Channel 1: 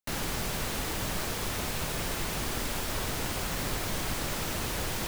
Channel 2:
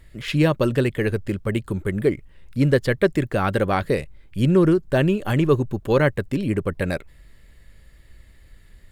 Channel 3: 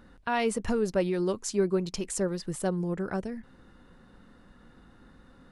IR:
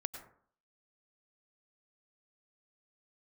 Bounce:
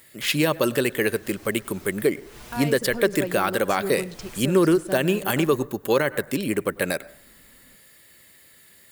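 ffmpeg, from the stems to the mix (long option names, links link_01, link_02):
-filter_complex "[0:a]asplit=2[link_01][link_02];[link_02]adelay=6.5,afreqshift=0.51[link_03];[link_01][link_03]amix=inputs=2:normalize=1,adelay=150,volume=-7dB[link_04];[1:a]highpass=130,aemphasis=mode=production:type=bsi,volume=1dB,asplit=3[link_05][link_06][link_07];[link_06]volume=-12.5dB[link_08];[2:a]adelay=2250,volume=-4dB[link_09];[link_07]apad=whole_len=230790[link_10];[link_04][link_10]sidechaincompress=threshold=-35dB:ratio=8:attack=34:release=259[link_11];[3:a]atrim=start_sample=2205[link_12];[link_08][link_12]afir=irnorm=-1:irlink=0[link_13];[link_11][link_05][link_09][link_13]amix=inputs=4:normalize=0,alimiter=limit=-8.5dB:level=0:latency=1:release=75"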